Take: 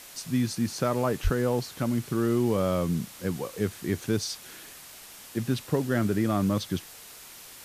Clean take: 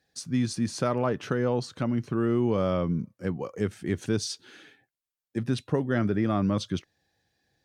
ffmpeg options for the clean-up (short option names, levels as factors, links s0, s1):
-filter_complex "[0:a]adeclick=t=4,asplit=3[s0][s1][s2];[s0]afade=t=out:st=1.23:d=0.02[s3];[s1]highpass=f=140:w=0.5412,highpass=f=140:w=1.3066,afade=t=in:st=1.23:d=0.02,afade=t=out:st=1.35:d=0.02[s4];[s2]afade=t=in:st=1.35:d=0.02[s5];[s3][s4][s5]amix=inputs=3:normalize=0,afwtdn=0.0056"